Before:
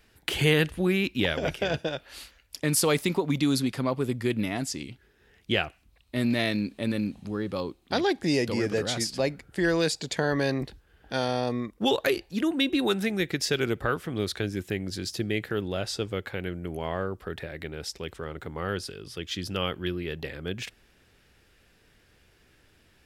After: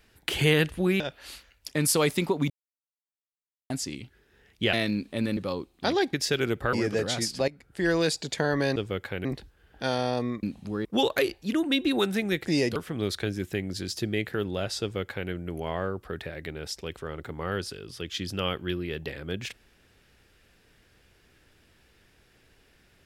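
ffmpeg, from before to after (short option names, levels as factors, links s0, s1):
-filter_complex "[0:a]asplit=15[s0][s1][s2][s3][s4][s5][s6][s7][s8][s9][s10][s11][s12][s13][s14];[s0]atrim=end=1.002[s15];[s1]atrim=start=1.878:end=3.38,asetpts=PTS-STARTPTS,afade=t=out:st=1.498:d=0.004:c=hsin[s16];[s2]atrim=start=3.38:end=4.58,asetpts=PTS-STARTPTS,volume=0[s17];[s3]atrim=start=4.58:end=5.612,asetpts=PTS-STARTPTS,afade=t=in:d=0.004:c=hsin[s18];[s4]atrim=start=6.388:end=7.032[s19];[s5]atrim=start=7.448:end=8.212[s20];[s6]atrim=start=13.328:end=13.932[s21];[s7]atrim=start=8.518:end=9.27,asetpts=PTS-STARTPTS,afade=t=out:st=0.748:d=0.004:c=hsin:silence=0.149624[s22];[s8]atrim=start=9.27:end=10.552,asetpts=PTS-STARTPTS,afade=t=in:d=0.42:silence=0.149624[s23];[s9]atrim=start=15.978:end=16.472[s24];[s10]atrim=start=10.548:end=11.732[s25];[s11]atrim=start=7.028:end=7.452[s26];[s12]atrim=start=11.728:end=13.332[s27];[s13]atrim=start=8.208:end=8.522[s28];[s14]atrim=start=13.928[s29];[s16][s17][s18]concat=n=3:v=0:a=1[s30];[s15][s30]acrossfade=d=0.004:c1=hsin:c2=hsin[s31];[s31][s19]acrossfade=d=0.004:c1=hsin:c2=hsin[s32];[s32][s20]acrossfade=d=0.004:c1=hsin:c2=hsin[s33];[s33][s21]acrossfade=d=0.004:c1=hsin:c2=hsin[s34];[s22][s23]concat=n=2:v=0:a=1[s35];[s34][s35]acrossfade=d=0.004:c1=hsin:c2=hsin[s36];[s36][s24]acrossfade=d=0.004:c1=hsin:c2=hsin[s37];[s37][s25]acrossfade=d=0.004:c1=hsin:c2=hsin[s38];[s38][s26]acrossfade=d=0.004:c1=hsin:c2=hsin[s39];[s39][s27]acrossfade=d=0.004:c1=hsin:c2=hsin[s40];[s40][s28]acrossfade=d=0.004:c1=hsin:c2=hsin[s41];[s41][s29]acrossfade=d=0.004:c1=hsin:c2=hsin"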